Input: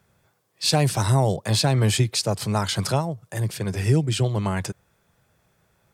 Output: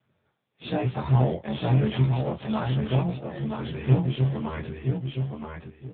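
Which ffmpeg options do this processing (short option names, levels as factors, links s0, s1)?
-filter_complex "[0:a]afftfilt=real='re':imag='-im':win_size=2048:overlap=0.75,asplit=2[s0][s1];[s1]acrusher=samples=34:mix=1:aa=0.000001:lfo=1:lforange=34:lforate=0.52,volume=0.282[s2];[s0][s2]amix=inputs=2:normalize=0,aecho=1:1:972|1944|2916:0.562|0.124|0.0272" -ar 8000 -c:a libopencore_amrnb -b:a 6700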